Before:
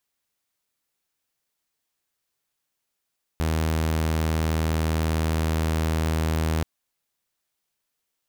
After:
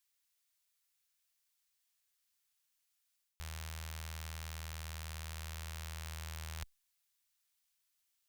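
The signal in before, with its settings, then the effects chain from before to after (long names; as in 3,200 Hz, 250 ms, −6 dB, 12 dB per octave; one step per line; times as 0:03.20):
tone saw 79.7 Hz −19 dBFS 3.23 s
guitar amp tone stack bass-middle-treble 10-0-10
reversed playback
downward compressor 6 to 1, threshold −42 dBFS
reversed playback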